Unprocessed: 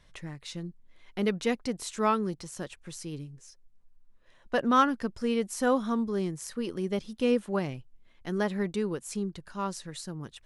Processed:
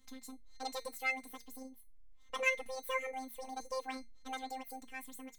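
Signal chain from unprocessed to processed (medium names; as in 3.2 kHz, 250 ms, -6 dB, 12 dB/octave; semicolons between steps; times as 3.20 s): robot voice 135 Hz; feedback comb 120 Hz, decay 0.41 s, harmonics all, mix 80%; wide varispeed 1.94×; trim +2.5 dB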